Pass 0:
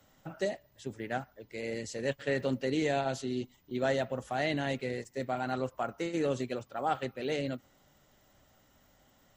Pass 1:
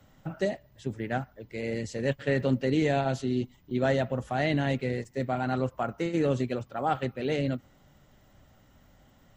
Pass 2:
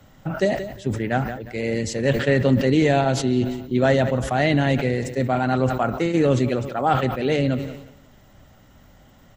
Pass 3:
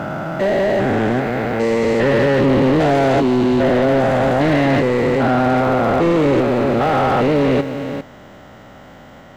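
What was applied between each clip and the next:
tone controls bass +7 dB, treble -5 dB; gain +3 dB
feedback echo 0.179 s, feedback 44%, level -20 dB; sustainer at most 67 dB/s; gain +7.5 dB
stepped spectrum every 0.4 s; in parallel at -7 dB: sample-and-hold 32×; on the sum: overdrive pedal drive 24 dB, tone 1200 Hz, clips at -9 dBFS; gain +2.5 dB

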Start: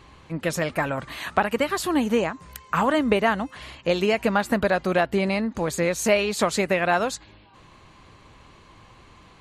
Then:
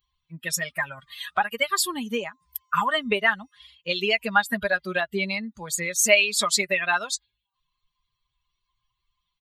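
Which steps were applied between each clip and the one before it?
per-bin expansion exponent 2; tilt shelf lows -9.5 dB, about 870 Hz; comb 4.9 ms, depth 55%; gain +1 dB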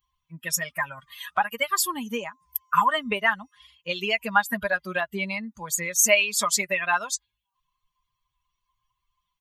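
thirty-one-band EQ 400 Hz -5 dB, 1000 Hz +7 dB, 4000 Hz -8 dB, 6300 Hz +5 dB, 12500 Hz +7 dB; gain -1.5 dB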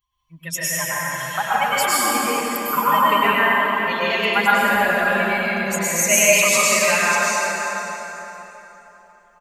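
outdoor echo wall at 93 m, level -8 dB; plate-style reverb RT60 3.5 s, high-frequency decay 0.7×, pre-delay 90 ms, DRR -9 dB; gain -2 dB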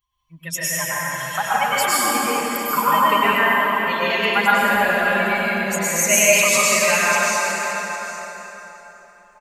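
echo 0.806 s -14 dB

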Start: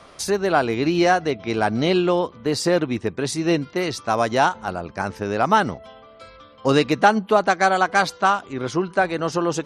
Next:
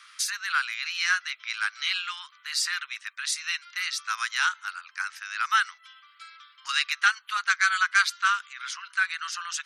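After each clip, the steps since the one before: steep high-pass 1300 Hz 48 dB/oct; gain +1 dB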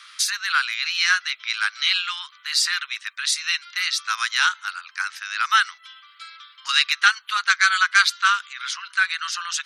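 bell 3800 Hz +5 dB 0.7 oct; gain +4.5 dB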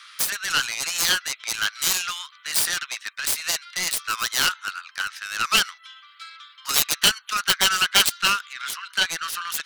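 self-modulated delay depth 0.38 ms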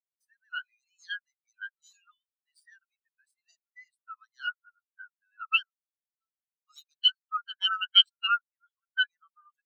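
spectral expander 4:1; gain -3.5 dB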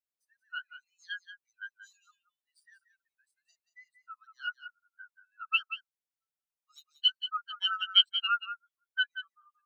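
echo 0.181 s -11 dB; gain -3 dB

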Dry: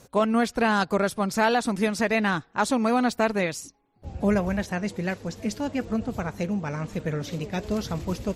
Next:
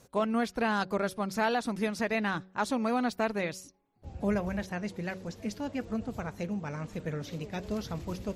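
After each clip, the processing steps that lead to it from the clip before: dynamic EQ 7900 Hz, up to -5 dB, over -53 dBFS, Q 2.3; de-hum 187.6 Hz, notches 3; gain -6.5 dB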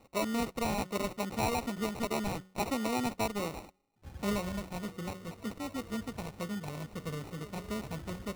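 high shelf 7200 Hz +10 dB; sample-and-hold 27×; gain -3.5 dB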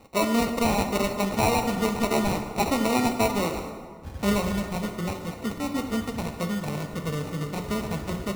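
plate-style reverb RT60 1.9 s, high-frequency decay 0.6×, DRR 5.5 dB; gain +8 dB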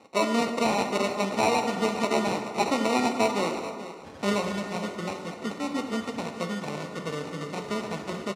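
BPF 230–7400 Hz; echo 0.432 s -13.5 dB

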